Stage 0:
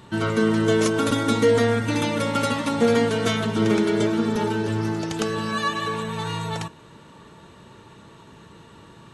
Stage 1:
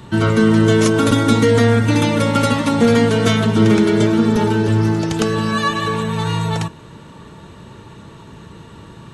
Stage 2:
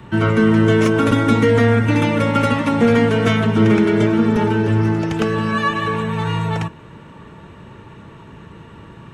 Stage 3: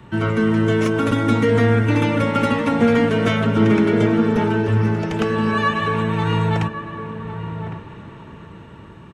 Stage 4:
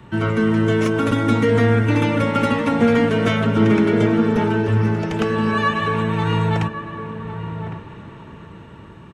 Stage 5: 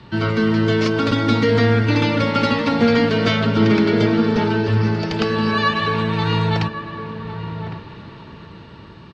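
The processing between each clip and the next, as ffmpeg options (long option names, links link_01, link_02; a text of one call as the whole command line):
ffmpeg -i in.wav -filter_complex "[0:a]lowshelf=frequency=200:gain=7.5,acrossover=split=300|910[link_01][link_02][link_03];[link_02]alimiter=limit=-18.5dB:level=0:latency=1[link_04];[link_01][link_04][link_03]amix=inputs=3:normalize=0,volume=5.5dB" out.wav
ffmpeg -i in.wav -filter_complex "[0:a]equalizer=frequency=5400:width=4.4:gain=3.5,acrossover=split=290|5300[link_01][link_02][link_03];[link_03]volume=23dB,asoftclip=hard,volume=-23dB[link_04];[link_01][link_02][link_04]amix=inputs=3:normalize=0,highshelf=frequency=3300:width_type=q:width=1.5:gain=-8,volume=-1dB" out.wav
ffmpeg -i in.wav -filter_complex "[0:a]acrossover=split=4500[link_01][link_02];[link_01]dynaudnorm=framelen=610:gausssize=5:maxgain=11.5dB[link_03];[link_03][link_02]amix=inputs=2:normalize=0,asplit=2[link_04][link_05];[link_05]adelay=1108,volume=-9dB,highshelf=frequency=4000:gain=-24.9[link_06];[link_04][link_06]amix=inputs=2:normalize=0,volume=-4dB" out.wav
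ffmpeg -i in.wav -af anull out.wav
ffmpeg -i in.wav -af "lowpass=frequency=4600:width_type=q:width=6.4" out.wav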